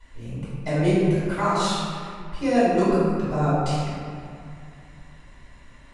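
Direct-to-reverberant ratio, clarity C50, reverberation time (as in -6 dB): -13.0 dB, -3.5 dB, 2.4 s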